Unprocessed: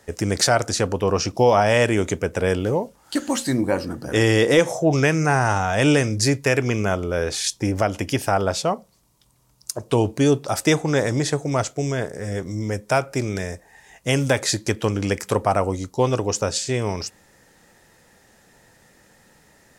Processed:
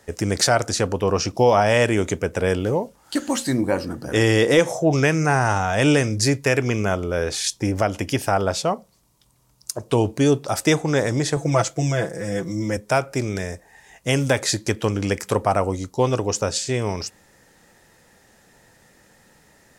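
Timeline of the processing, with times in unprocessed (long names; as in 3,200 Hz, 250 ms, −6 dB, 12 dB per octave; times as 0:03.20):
0:11.36–0:12.77: comb filter 6 ms, depth 92%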